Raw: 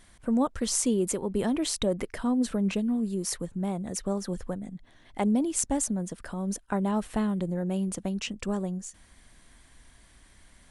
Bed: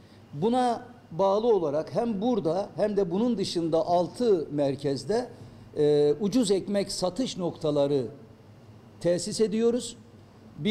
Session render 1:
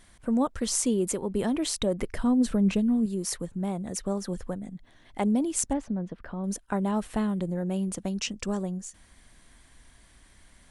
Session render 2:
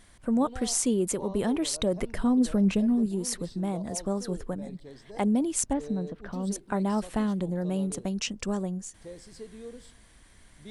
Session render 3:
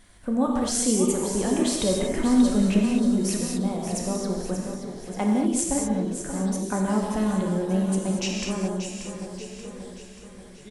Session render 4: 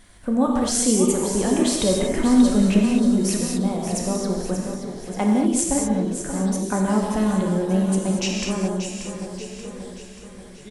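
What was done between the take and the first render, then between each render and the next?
2.02–3.06 s: bass shelf 170 Hz +9.5 dB; 5.73–6.44 s: distance through air 320 m; 8.05–8.63 s: peaking EQ 5.7 kHz +7 dB
add bed -19 dB
feedback delay 583 ms, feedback 53%, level -9.5 dB; gated-style reverb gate 260 ms flat, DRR -1 dB
trim +3.5 dB

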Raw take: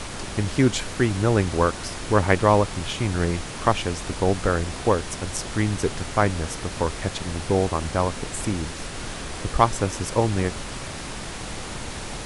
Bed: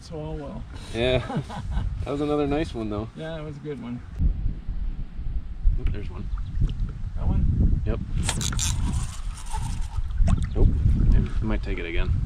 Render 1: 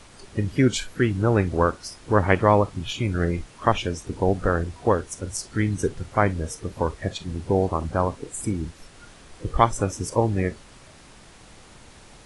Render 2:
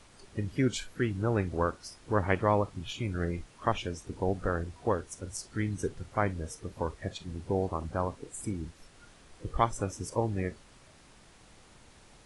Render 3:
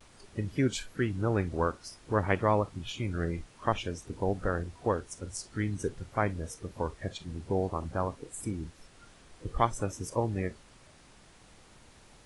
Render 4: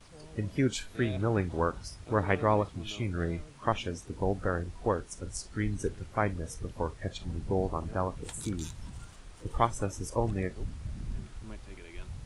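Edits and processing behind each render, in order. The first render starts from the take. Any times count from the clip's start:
noise print and reduce 15 dB
trim -8.5 dB
vibrato 0.52 Hz 34 cents
add bed -18.5 dB

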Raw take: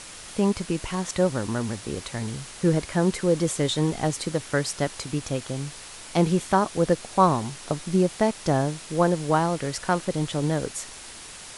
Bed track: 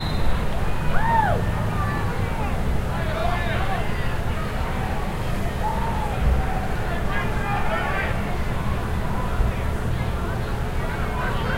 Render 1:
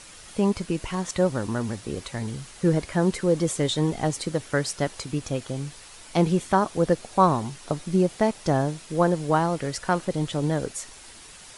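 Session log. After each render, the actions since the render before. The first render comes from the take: noise reduction 6 dB, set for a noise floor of -42 dBFS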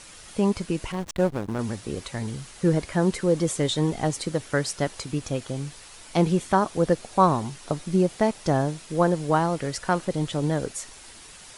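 0.92–1.59 s: hysteresis with a dead band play -24.5 dBFS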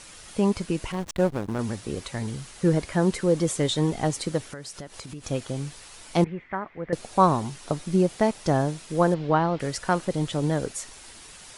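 4.45–5.24 s: compression, threshold -35 dBFS; 6.24–6.93 s: four-pole ladder low-pass 2.2 kHz, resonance 75%; 9.14–9.60 s: low-pass 4.2 kHz 24 dB/octave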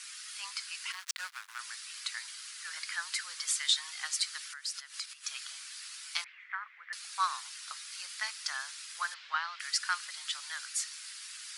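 steep high-pass 1.3 kHz 36 dB/octave; dynamic bell 4.7 kHz, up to +7 dB, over -56 dBFS, Q 3.2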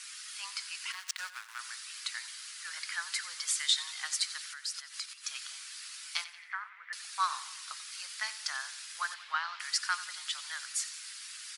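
feedback delay 90 ms, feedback 52%, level -15 dB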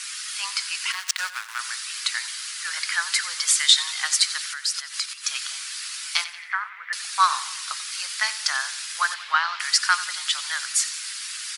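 trim +12 dB; peak limiter -2 dBFS, peak gain reduction 1.5 dB

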